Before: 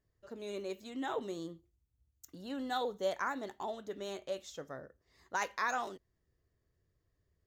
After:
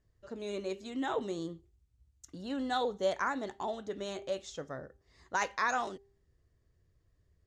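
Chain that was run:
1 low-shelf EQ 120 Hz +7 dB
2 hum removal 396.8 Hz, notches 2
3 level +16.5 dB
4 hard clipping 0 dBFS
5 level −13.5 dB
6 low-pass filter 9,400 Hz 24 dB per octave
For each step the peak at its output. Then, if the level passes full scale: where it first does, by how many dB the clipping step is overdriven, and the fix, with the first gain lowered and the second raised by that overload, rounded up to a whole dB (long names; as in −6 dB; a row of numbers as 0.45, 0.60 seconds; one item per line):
−21.5, −21.5, −5.0, −5.0, −18.5, −18.5 dBFS
no step passes full scale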